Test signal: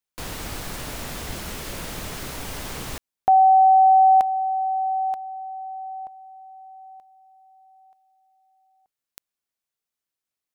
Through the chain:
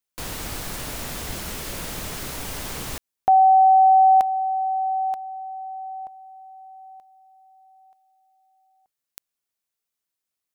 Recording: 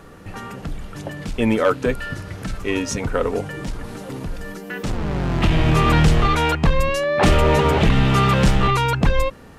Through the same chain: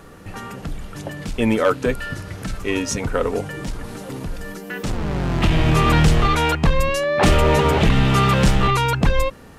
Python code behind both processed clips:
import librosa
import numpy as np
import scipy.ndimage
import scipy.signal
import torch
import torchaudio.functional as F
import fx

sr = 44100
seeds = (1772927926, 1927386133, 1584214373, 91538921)

y = fx.high_shelf(x, sr, hz=5700.0, db=4.0)